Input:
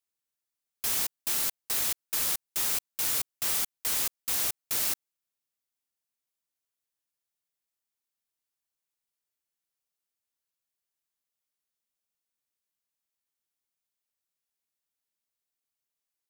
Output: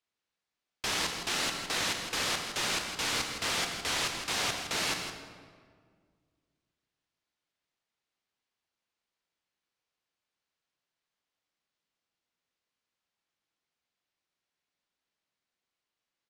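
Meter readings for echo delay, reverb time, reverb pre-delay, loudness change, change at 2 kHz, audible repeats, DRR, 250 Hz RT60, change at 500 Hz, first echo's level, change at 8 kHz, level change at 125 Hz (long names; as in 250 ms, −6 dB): 163 ms, 1.8 s, 20 ms, −3.5 dB, +7.5 dB, 1, 3.5 dB, 2.4 s, +7.5 dB, −9.5 dB, −4.5 dB, +7.0 dB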